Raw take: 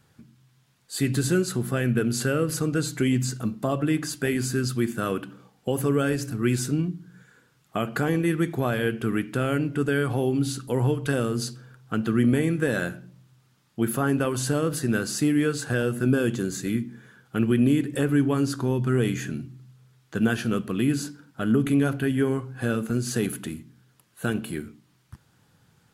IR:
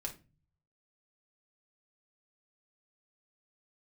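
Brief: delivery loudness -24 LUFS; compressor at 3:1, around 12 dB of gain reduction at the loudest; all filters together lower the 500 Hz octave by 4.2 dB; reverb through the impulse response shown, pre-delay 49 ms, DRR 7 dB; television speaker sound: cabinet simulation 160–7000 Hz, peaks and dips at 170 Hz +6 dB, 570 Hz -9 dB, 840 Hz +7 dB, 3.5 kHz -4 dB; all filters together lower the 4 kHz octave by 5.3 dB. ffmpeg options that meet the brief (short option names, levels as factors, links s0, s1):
-filter_complex "[0:a]equalizer=f=500:t=o:g=-3.5,equalizer=f=4000:t=o:g=-5,acompressor=threshold=0.02:ratio=3,asplit=2[s0][s1];[1:a]atrim=start_sample=2205,adelay=49[s2];[s1][s2]afir=irnorm=-1:irlink=0,volume=0.501[s3];[s0][s3]amix=inputs=2:normalize=0,highpass=f=160:w=0.5412,highpass=f=160:w=1.3066,equalizer=f=170:t=q:w=4:g=6,equalizer=f=570:t=q:w=4:g=-9,equalizer=f=840:t=q:w=4:g=7,equalizer=f=3500:t=q:w=4:g=-4,lowpass=f=7000:w=0.5412,lowpass=f=7000:w=1.3066,volume=3.98"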